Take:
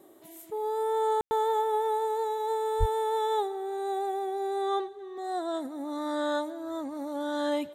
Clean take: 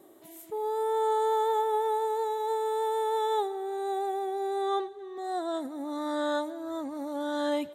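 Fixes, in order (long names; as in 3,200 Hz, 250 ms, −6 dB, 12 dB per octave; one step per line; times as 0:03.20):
0:02.79–0:02.91: high-pass filter 140 Hz 24 dB per octave
ambience match 0:01.21–0:01.31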